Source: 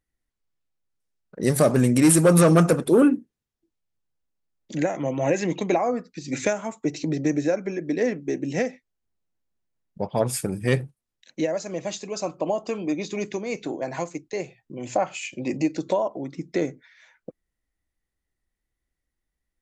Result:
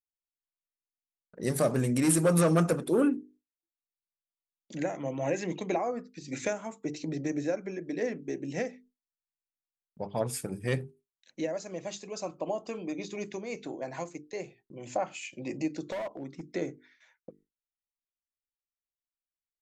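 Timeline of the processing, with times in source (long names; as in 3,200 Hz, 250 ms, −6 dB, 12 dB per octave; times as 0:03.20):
0:15.92–0:16.54: hard clipping −24.5 dBFS
whole clip: mains-hum notches 50/100/150/200/250/300/350/400/450 Hz; noise gate with hold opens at −45 dBFS; level −7.5 dB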